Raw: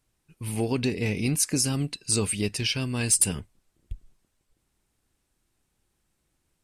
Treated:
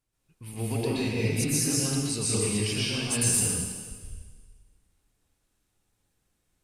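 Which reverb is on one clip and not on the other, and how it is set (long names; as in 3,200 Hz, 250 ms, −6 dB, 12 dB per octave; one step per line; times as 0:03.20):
dense smooth reverb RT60 1.5 s, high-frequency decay 1×, pre-delay 110 ms, DRR −8 dB
level −9 dB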